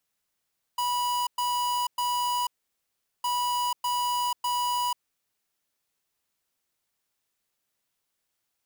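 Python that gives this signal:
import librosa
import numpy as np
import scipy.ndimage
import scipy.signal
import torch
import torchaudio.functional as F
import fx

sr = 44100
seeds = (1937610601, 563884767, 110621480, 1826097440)

y = fx.beep_pattern(sr, wave='square', hz=979.0, on_s=0.49, off_s=0.11, beeps=3, pause_s=0.77, groups=2, level_db=-27.0)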